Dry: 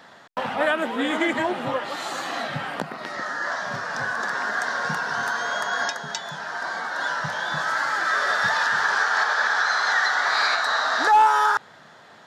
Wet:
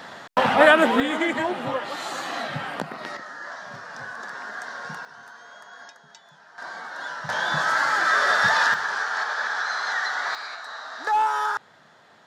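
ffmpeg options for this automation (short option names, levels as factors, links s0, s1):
-af "asetnsamples=n=441:p=0,asendcmd='1 volume volume -1dB;3.17 volume volume -9dB;5.05 volume volume -19dB;6.58 volume volume -7dB;7.29 volume volume 2.5dB;8.74 volume volume -5dB;10.35 volume volume -14dB;11.07 volume volume -5.5dB',volume=2.51"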